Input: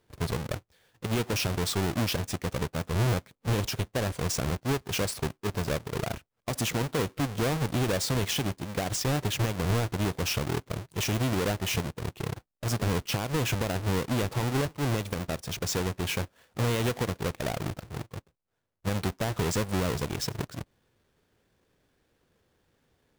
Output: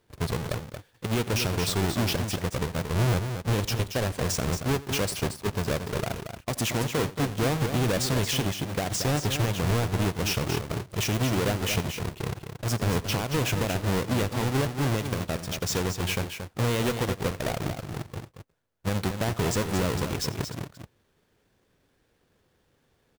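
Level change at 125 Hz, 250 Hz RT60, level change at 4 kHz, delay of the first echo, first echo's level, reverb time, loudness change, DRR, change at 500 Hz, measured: +2.0 dB, no reverb audible, +2.0 dB, 88 ms, −19.0 dB, no reverb audible, +2.0 dB, no reverb audible, +2.0 dB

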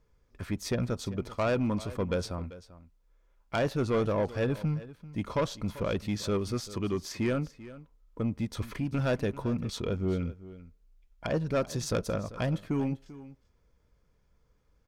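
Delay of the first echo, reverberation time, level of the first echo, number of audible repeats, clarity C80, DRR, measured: 391 ms, no reverb audible, −17.0 dB, 1, no reverb audible, no reverb audible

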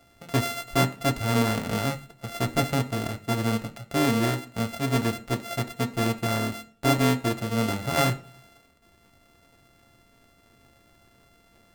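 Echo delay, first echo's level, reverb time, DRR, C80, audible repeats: no echo audible, no echo audible, 0.40 s, 6.0 dB, 22.0 dB, no echo audible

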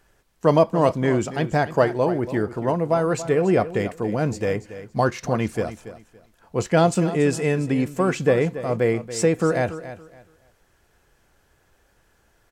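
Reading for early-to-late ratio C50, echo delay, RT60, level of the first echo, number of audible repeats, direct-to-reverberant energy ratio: no reverb audible, 282 ms, no reverb audible, −13.5 dB, 2, no reverb audible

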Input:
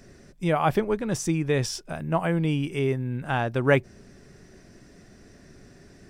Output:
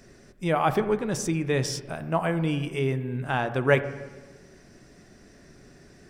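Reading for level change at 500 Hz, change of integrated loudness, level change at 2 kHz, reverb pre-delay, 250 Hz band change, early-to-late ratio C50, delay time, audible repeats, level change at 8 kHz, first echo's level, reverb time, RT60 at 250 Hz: 0.0 dB, −1.0 dB, +0.5 dB, 9 ms, −1.5 dB, 12.0 dB, no echo audible, no echo audible, 0.0 dB, no echo audible, 1.2 s, 1.3 s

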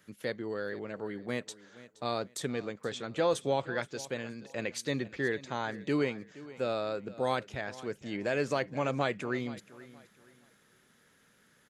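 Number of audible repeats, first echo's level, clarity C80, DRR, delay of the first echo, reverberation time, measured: 2, −18.0 dB, no reverb audible, no reverb audible, 473 ms, no reverb audible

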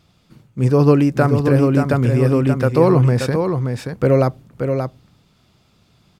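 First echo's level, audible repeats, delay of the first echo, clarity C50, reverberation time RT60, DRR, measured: −6.0 dB, 1, 579 ms, no reverb audible, no reverb audible, no reverb audible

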